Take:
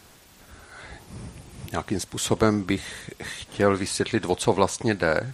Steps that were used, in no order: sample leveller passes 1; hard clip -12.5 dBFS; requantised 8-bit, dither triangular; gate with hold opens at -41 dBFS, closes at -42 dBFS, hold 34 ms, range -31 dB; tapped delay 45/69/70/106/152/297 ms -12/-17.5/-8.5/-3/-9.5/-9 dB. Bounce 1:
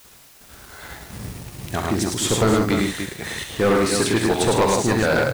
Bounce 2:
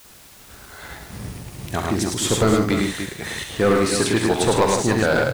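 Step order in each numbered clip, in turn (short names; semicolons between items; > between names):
gate with hold > tapped delay > requantised > sample leveller > hard clip; hard clip > tapped delay > sample leveller > gate with hold > requantised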